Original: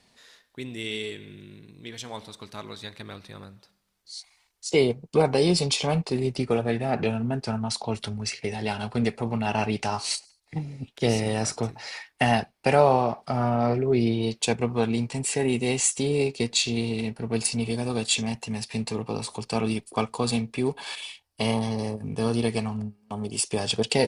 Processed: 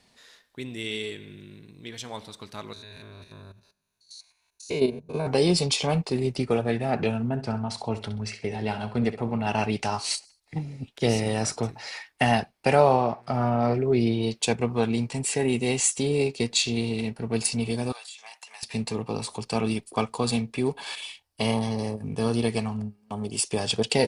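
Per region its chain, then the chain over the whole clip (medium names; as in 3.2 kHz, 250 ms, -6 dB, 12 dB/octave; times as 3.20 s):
2.73–5.27 s: spectrogram pixelated in time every 100 ms + rippled EQ curve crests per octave 1.5, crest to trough 10 dB + level held to a coarse grid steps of 9 dB
7.29–9.47 s: treble shelf 3.5 kHz -10 dB + flutter echo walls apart 11.2 m, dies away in 0.31 s
12.95–13.62 s: treble shelf 5.9 kHz -6 dB + mains buzz 120 Hz, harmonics 22, -57 dBFS -5 dB/octave
17.92–18.63 s: high-pass 830 Hz 24 dB/octave + compression 12:1, threshold -39 dBFS
whole clip: none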